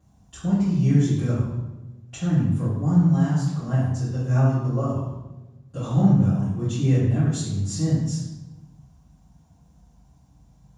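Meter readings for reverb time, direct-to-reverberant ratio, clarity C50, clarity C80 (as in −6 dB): 1.1 s, −15.0 dB, −0.5 dB, 3.0 dB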